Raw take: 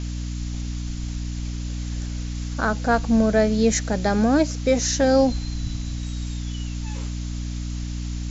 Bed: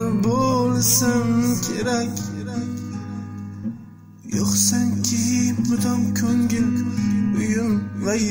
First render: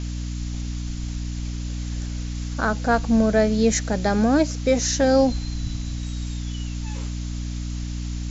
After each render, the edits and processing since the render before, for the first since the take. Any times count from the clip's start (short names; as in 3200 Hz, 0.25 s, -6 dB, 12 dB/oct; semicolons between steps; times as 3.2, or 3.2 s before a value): nothing audible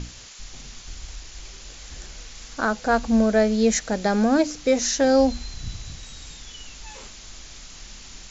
notches 60/120/180/240/300 Hz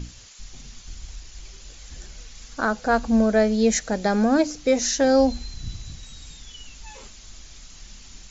denoiser 6 dB, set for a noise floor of -43 dBFS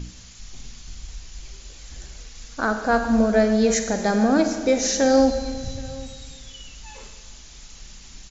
echo 0.777 s -22 dB; Schroeder reverb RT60 1.6 s, DRR 6.5 dB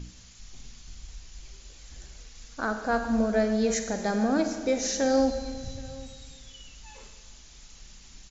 gain -6.5 dB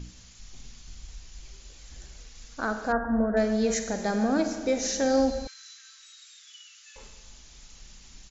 2.92–3.37 brick-wall FIR low-pass 2000 Hz; 5.47–6.96 steep high-pass 1200 Hz 72 dB/oct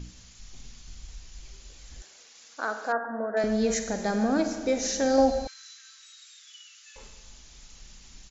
2.02–3.44 HPF 440 Hz; 5.18–5.68 bell 700 Hz +10.5 dB 0.61 oct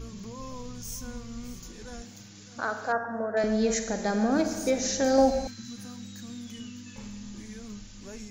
add bed -22 dB